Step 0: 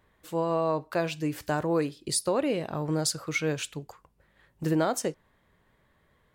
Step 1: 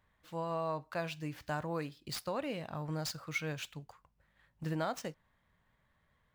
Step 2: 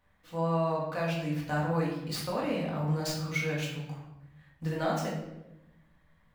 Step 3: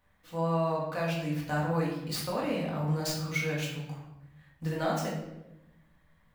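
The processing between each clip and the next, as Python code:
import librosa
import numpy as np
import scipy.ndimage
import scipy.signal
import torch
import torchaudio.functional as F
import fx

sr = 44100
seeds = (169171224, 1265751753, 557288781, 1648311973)

y1 = scipy.ndimage.median_filter(x, 5, mode='constant')
y1 = fx.peak_eq(y1, sr, hz=380.0, db=-10.0, octaves=0.95)
y1 = y1 * librosa.db_to_amplitude(-6.0)
y2 = fx.room_shoebox(y1, sr, seeds[0], volume_m3=320.0, walls='mixed', distance_m=1.9)
y3 = fx.high_shelf(y2, sr, hz=7600.0, db=4.5)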